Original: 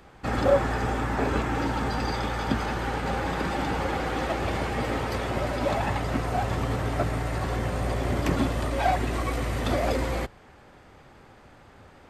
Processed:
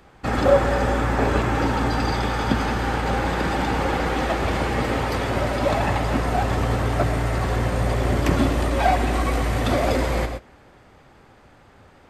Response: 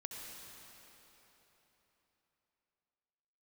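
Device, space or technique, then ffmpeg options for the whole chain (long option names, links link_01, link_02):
keyed gated reverb: -filter_complex "[0:a]asplit=3[link_01][link_02][link_03];[1:a]atrim=start_sample=2205[link_04];[link_02][link_04]afir=irnorm=-1:irlink=0[link_05];[link_03]apad=whole_len=533533[link_06];[link_05][link_06]sidechaingate=range=-23dB:threshold=-42dB:ratio=16:detection=peak,volume=1.5dB[link_07];[link_01][link_07]amix=inputs=2:normalize=0"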